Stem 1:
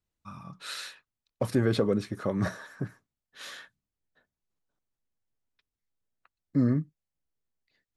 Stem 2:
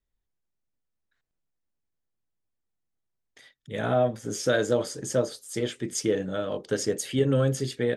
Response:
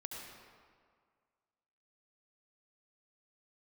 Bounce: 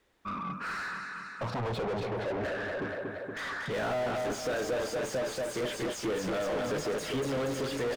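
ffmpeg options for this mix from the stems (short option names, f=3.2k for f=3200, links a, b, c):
-filter_complex "[0:a]asoftclip=type=tanh:threshold=-29.5dB,lowpass=f=1.1k:p=1,asplit=2[a][b];[b]afreqshift=-0.39[c];[a][c]amix=inputs=2:normalize=1,volume=-5.5dB,asplit=2[d][e];[e]volume=-10dB[f];[1:a]acompressor=threshold=-25dB:ratio=6,volume=-5dB,asplit=2[g][h];[h]volume=-7.5dB[i];[f][i]amix=inputs=2:normalize=0,aecho=0:1:235|470|705|940|1175|1410|1645|1880|2115|2350:1|0.6|0.36|0.216|0.13|0.0778|0.0467|0.028|0.0168|0.0101[j];[d][g][j]amix=inputs=3:normalize=0,asplit=2[k][l];[l]highpass=f=720:p=1,volume=38dB,asoftclip=type=tanh:threshold=-25dB[m];[k][m]amix=inputs=2:normalize=0,lowpass=f=1.6k:p=1,volume=-6dB"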